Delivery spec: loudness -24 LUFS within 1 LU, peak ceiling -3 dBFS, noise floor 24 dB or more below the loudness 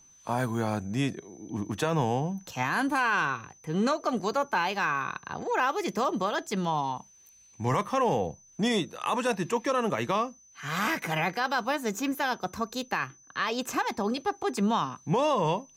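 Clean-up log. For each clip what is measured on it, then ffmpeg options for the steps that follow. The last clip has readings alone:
steady tone 6100 Hz; tone level -55 dBFS; loudness -29.0 LUFS; peak -15.0 dBFS; loudness target -24.0 LUFS
-> -af "bandreject=f=6.1k:w=30"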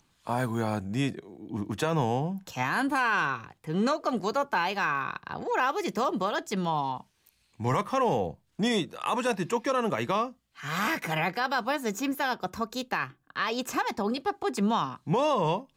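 steady tone none; loudness -29.0 LUFS; peak -15.5 dBFS; loudness target -24.0 LUFS
-> -af "volume=5dB"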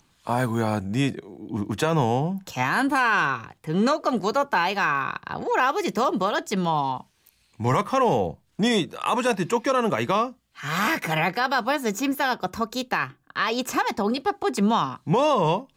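loudness -24.0 LUFS; peak -10.5 dBFS; noise floor -65 dBFS

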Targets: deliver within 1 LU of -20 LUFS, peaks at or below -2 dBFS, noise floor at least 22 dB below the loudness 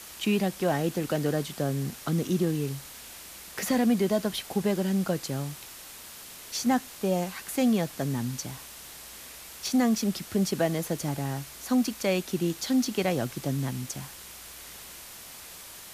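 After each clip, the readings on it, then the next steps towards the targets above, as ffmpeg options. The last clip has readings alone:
noise floor -45 dBFS; noise floor target -51 dBFS; loudness -28.5 LUFS; peak -14.0 dBFS; loudness target -20.0 LUFS
-> -af "afftdn=nr=6:nf=-45"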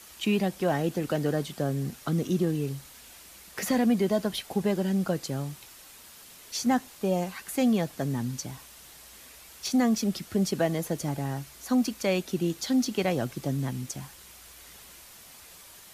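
noise floor -50 dBFS; noise floor target -51 dBFS
-> -af "afftdn=nr=6:nf=-50"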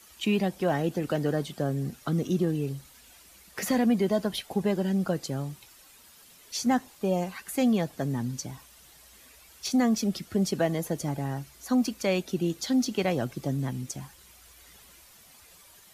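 noise floor -55 dBFS; loudness -28.5 LUFS; peak -14.5 dBFS; loudness target -20.0 LUFS
-> -af "volume=8.5dB"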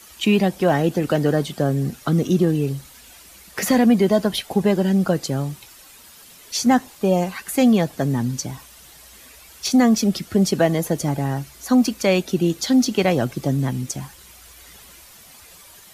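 loudness -20.0 LUFS; peak -6.0 dBFS; noise floor -46 dBFS

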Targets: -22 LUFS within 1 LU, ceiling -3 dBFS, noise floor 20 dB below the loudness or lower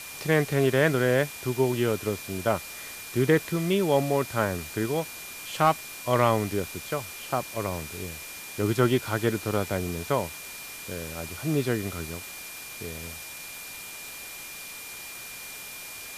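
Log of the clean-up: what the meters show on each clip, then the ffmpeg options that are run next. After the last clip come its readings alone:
steady tone 2400 Hz; tone level -43 dBFS; noise floor -41 dBFS; noise floor target -48 dBFS; loudness -28.0 LUFS; peak -9.0 dBFS; loudness target -22.0 LUFS
-> -af "bandreject=f=2.4k:w=30"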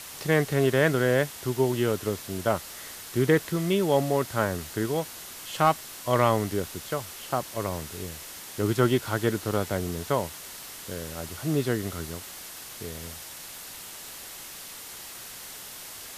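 steady tone none; noise floor -42 dBFS; noise floor target -48 dBFS
-> -af "afftdn=nr=6:nf=-42"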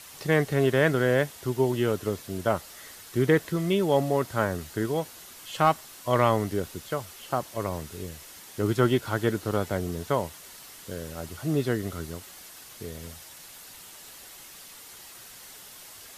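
noise floor -47 dBFS; loudness -27.0 LUFS; peak -9.0 dBFS; loudness target -22.0 LUFS
-> -af "volume=5dB"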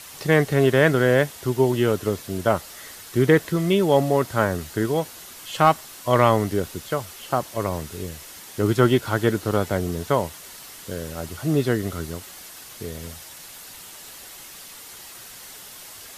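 loudness -22.0 LUFS; peak -4.0 dBFS; noise floor -42 dBFS

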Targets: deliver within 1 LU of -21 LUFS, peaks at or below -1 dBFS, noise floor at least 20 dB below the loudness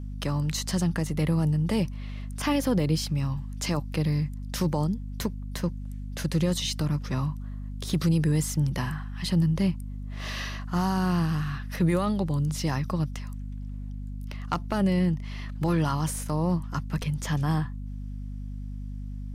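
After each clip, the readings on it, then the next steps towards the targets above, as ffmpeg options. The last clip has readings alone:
hum 50 Hz; harmonics up to 250 Hz; hum level -32 dBFS; loudness -28.0 LUFS; peak -13.5 dBFS; loudness target -21.0 LUFS
-> -af "bandreject=f=50:t=h:w=6,bandreject=f=100:t=h:w=6,bandreject=f=150:t=h:w=6,bandreject=f=200:t=h:w=6,bandreject=f=250:t=h:w=6"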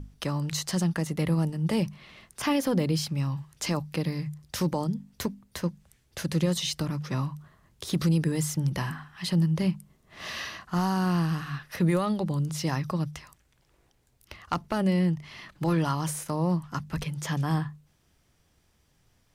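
hum none; loudness -29.0 LUFS; peak -14.0 dBFS; loudness target -21.0 LUFS
-> -af "volume=8dB"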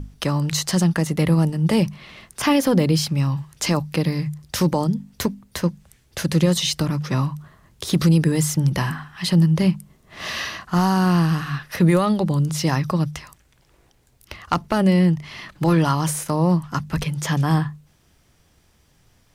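loudness -21.0 LUFS; peak -6.0 dBFS; noise floor -59 dBFS

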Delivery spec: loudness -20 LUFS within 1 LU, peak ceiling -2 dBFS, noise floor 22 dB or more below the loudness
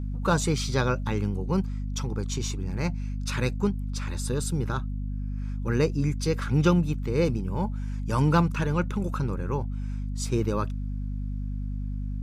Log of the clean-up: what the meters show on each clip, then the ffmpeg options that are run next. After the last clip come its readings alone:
hum 50 Hz; harmonics up to 250 Hz; hum level -28 dBFS; loudness -28.0 LUFS; peak -9.0 dBFS; loudness target -20.0 LUFS
-> -af "bandreject=f=50:t=h:w=6,bandreject=f=100:t=h:w=6,bandreject=f=150:t=h:w=6,bandreject=f=200:t=h:w=6,bandreject=f=250:t=h:w=6"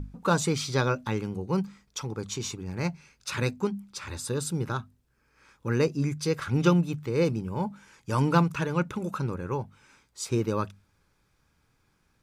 hum none; loudness -29.0 LUFS; peak -9.0 dBFS; loudness target -20.0 LUFS
-> -af "volume=9dB,alimiter=limit=-2dB:level=0:latency=1"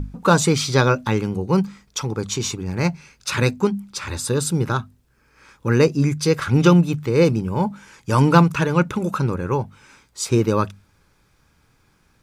loudness -20.0 LUFS; peak -2.0 dBFS; noise floor -61 dBFS

